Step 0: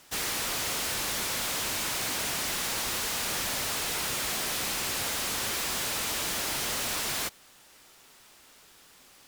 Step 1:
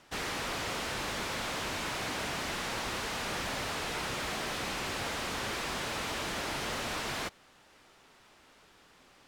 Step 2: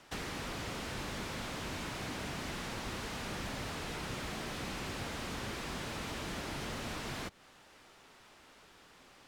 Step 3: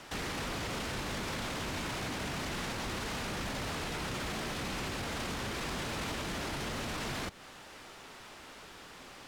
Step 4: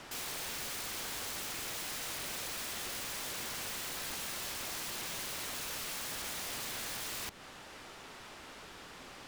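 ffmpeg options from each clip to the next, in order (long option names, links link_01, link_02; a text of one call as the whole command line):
ffmpeg -i in.wav -af "aemphasis=mode=reproduction:type=75fm" out.wav
ffmpeg -i in.wav -filter_complex "[0:a]acrossover=split=320[link_01][link_02];[link_02]acompressor=threshold=-42dB:ratio=5[link_03];[link_01][link_03]amix=inputs=2:normalize=0,volume=1dB" out.wav
ffmpeg -i in.wav -af "alimiter=level_in=14dB:limit=-24dB:level=0:latency=1:release=12,volume=-14dB,volume=9dB" out.wav
ffmpeg -i in.wav -af "aeval=exprs='(mod(59.6*val(0)+1,2)-1)/59.6':channel_layout=same" out.wav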